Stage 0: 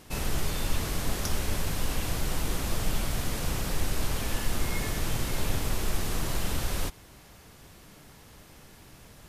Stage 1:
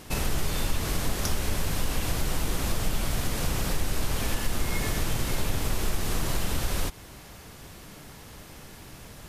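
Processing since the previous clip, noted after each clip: compressor 2:1, threshold -31 dBFS, peak gain reduction 6.5 dB; gain +6 dB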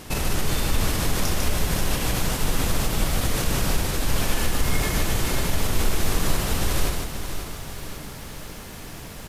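limiter -19.5 dBFS, peak gain reduction 5.5 dB; on a send: echo 0.15 s -4 dB; on the sum: lo-fi delay 0.536 s, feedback 55%, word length 9-bit, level -9.5 dB; gain +5 dB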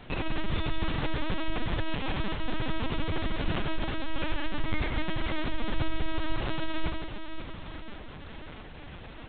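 LPC vocoder at 8 kHz pitch kept; gain -5.5 dB

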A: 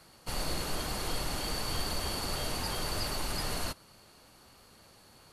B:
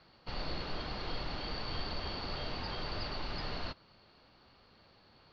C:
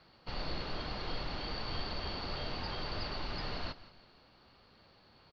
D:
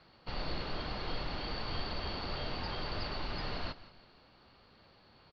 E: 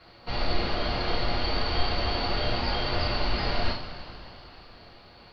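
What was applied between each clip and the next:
steep low-pass 4800 Hz 48 dB/oct; gain -4 dB
feedback echo 0.169 s, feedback 40%, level -17 dB
LPF 5500 Hz 12 dB/oct; gain +1 dB
two-slope reverb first 0.38 s, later 3.9 s, from -18 dB, DRR -5 dB; gain +4.5 dB

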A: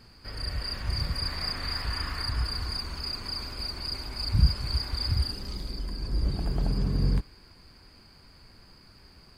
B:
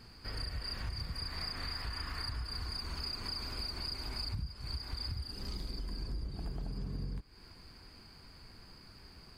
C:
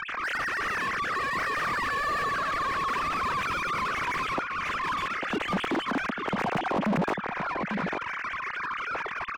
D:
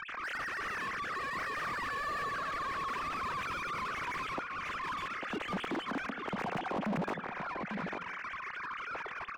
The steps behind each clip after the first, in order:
notch 570 Hz, Q 18; compressor 16:1, threshold -34 dBFS, peak gain reduction 21 dB; gain -1 dB
sine-wave speech; echo 0.847 s -17.5 dB; overdrive pedal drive 38 dB, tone 1200 Hz, clips at -18.5 dBFS
reverb RT60 0.55 s, pre-delay 0.146 s, DRR 16.5 dB; gain -8 dB

